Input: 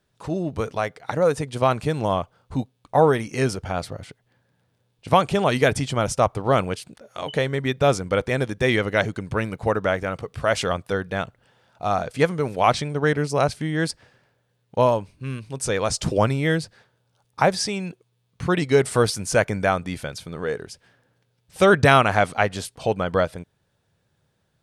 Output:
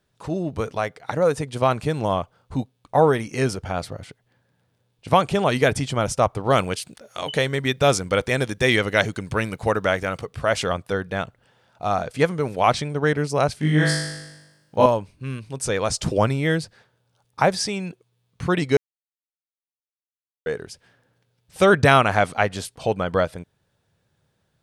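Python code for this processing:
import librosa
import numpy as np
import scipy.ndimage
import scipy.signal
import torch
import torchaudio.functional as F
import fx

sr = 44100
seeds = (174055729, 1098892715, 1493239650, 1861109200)

y = fx.high_shelf(x, sr, hz=2300.0, db=7.5, at=(6.5, 10.26))
y = fx.room_flutter(y, sr, wall_m=3.4, rt60_s=1.0, at=(13.6, 14.86))
y = fx.edit(y, sr, fx.silence(start_s=18.77, length_s=1.69), tone=tone)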